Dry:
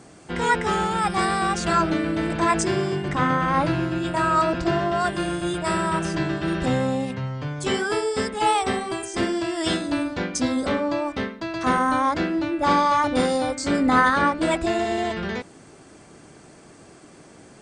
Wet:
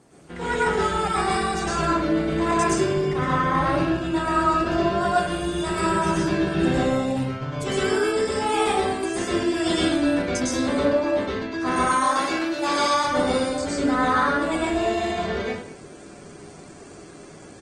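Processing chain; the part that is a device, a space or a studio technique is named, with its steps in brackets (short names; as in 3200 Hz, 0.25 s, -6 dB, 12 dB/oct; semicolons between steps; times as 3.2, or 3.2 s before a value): 11.76–12.94 RIAA curve recording; speakerphone in a meeting room (reverb RT60 0.55 s, pre-delay 0.102 s, DRR -5 dB; speakerphone echo 0.2 s, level -18 dB; AGC gain up to 6 dB; gain -8 dB; Opus 20 kbps 48000 Hz)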